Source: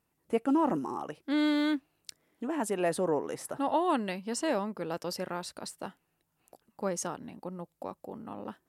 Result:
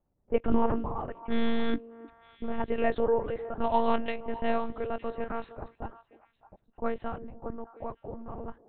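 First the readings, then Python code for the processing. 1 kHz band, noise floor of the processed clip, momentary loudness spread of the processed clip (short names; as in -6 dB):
+1.0 dB, -74 dBFS, 15 LU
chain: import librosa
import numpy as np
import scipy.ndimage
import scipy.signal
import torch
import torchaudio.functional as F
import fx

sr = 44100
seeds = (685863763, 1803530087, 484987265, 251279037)

y = fx.lpc_monotone(x, sr, seeds[0], pitch_hz=230.0, order=8)
y = fx.env_lowpass(y, sr, base_hz=710.0, full_db=-23.5)
y = fx.echo_stepped(y, sr, ms=304, hz=390.0, octaves=1.4, feedback_pct=70, wet_db=-12)
y = y * librosa.db_to_amplitude(3.0)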